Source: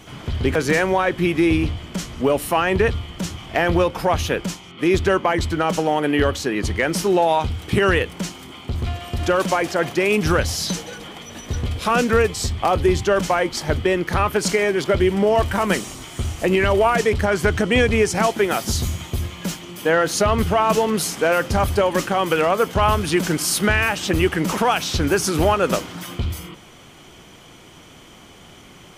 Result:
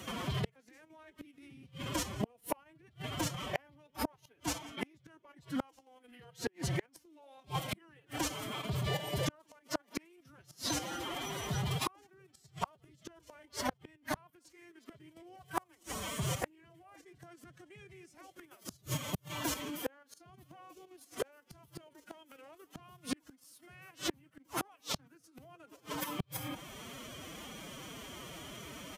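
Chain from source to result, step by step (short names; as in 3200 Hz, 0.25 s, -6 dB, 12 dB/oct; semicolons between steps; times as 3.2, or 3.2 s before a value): high shelf 11000 Hz +11 dB; notch 500 Hz, Q 12; level quantiser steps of 10 dB; feedback echo 0.171 s, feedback 42%, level -23 dB; formant-preserving pitch shift +9 st; HPF 49 Hz 6 dB/oct; flipped gate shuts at -19 dBFS, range -40 dB; dynamic EQ 880 Hz, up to +6 dB, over -55 dBFS, Q 1.4; three-band squash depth 40%; gain -1.5 dB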